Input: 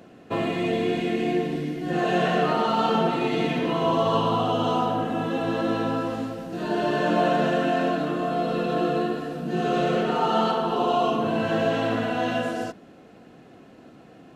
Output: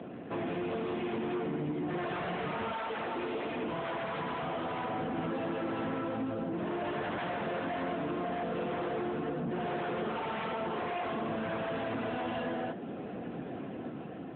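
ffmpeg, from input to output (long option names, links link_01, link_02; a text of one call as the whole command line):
ffmpeg -i in.wav -filter_complex "[0:a]aeval=exprs='0.376*sin(PI/2*4.47*val(0)/0.376)':channel_layout=same,flanger=delay=8:depth=8.1:regen=-86:speed=0.62:shape=triangular,dynaudnorm=framelen=220:gausssize=7:maxgain=4.5dB,asettb=1/sr,asplit=3[link_01][link_02][link_03];[link_01]atrim=end=2.704[link_04];[link_02]atrim=start=2.7:end=4.88,asetpts=PTS-STARTPTS,afade=type=in:duration=0.004:curve=qsin,afade=type=out:start_time=2.176:duration=0.004:curve=qsin,acrossover=split=220[link_05][link_06];[link_05]adelay=690[link_07];[link_07][link_06]amix=inputs=2:normalize=0,atrim=end_sample=96138[link_08];[link_03]atrim=start=4.876[link_09];[link_04][link_08]acrossfade=duration=0.004:curve1=hsin:curve2=qsin[link_10];[link_10][link_09]acrossfade=duration=0.004:curve1=qsin:curve2=hsin,asoftclip=type=tanh:threshold=-16.5dB,acompressor=threshold=-26dB:ratio=16,highpass=frequency=72:width=0.5412,highpass=frequency=72:width=1.3066,aemphasis=mode=reproduction:type=50kf,volume=-6.5dB" -ar 8000 -c:a libopencore_amrnb -b:a 10200 out.amr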